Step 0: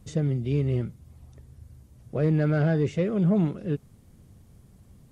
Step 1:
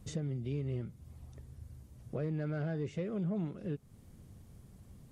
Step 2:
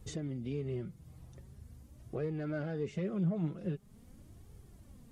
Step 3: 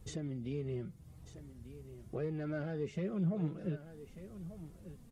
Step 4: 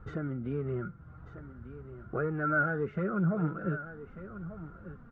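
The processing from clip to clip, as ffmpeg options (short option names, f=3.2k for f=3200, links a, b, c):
-af "acompressor=threshold=-36dB:ratio=2.5,volume=-2dB"
-af "flanger=delay=2.2:depth=4.4:regen=31:speed=0.44:shape=triangular,volume=4.5dB"
-af "aecho=1:1:1192:0.211,volume=-1.5dB"
-af "lowpass=f=1.4k:t=q:w=16,volume=4.5dB"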